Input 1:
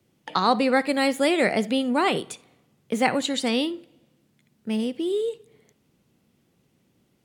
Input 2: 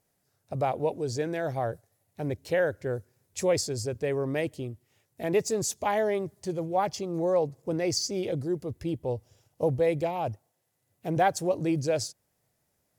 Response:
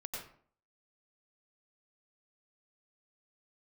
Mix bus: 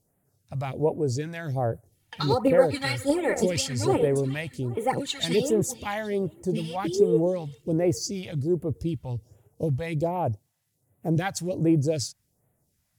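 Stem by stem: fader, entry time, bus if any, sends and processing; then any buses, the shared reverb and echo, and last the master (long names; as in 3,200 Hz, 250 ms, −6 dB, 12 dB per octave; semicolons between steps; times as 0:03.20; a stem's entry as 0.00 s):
−6.5 dB, 1.85 s, no send, echo send −16.5 dB, comb filter 2.2 ms, depth 56%; phase shifter 1.6 Hz, delay 4.5 ms, feedback 65%
+1.5 dB, 0.00 s, no send, no echo send, no processing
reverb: not used
echo: repeating echo 408 ms, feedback 48%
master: all-pass phaser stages 2, 1.3 Hz, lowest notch 370–4,800 Hz; low-shelf EQ 440 Hz +5 dB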